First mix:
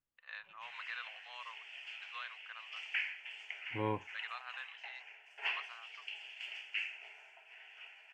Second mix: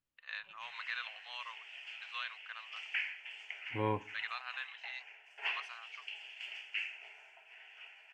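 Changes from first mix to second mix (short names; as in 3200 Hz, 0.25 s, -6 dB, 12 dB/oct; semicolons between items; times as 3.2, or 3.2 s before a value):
first voice: add high shelf 2400 Hz +10.5 dB; second voice: send on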